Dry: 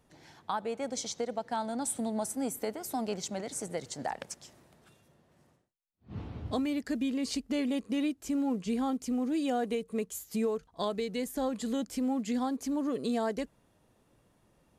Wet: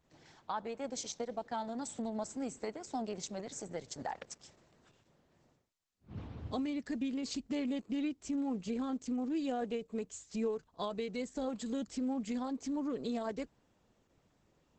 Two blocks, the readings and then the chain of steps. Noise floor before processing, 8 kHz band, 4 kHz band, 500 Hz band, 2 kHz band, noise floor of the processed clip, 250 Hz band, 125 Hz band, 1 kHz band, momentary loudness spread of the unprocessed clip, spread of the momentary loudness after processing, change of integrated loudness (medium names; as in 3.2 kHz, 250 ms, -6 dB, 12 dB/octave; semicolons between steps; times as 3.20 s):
-69 dBFS, -7.0 dB, -5.5 dB, -5.0 dB, -6.0 dB, -74 dBFS, -5.0 dB, -4.5 dB, -5.5 dB, 7 LU, 7 LU, -5.0 dB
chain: trim -4 dB; Opus 10 kbps 48 kHz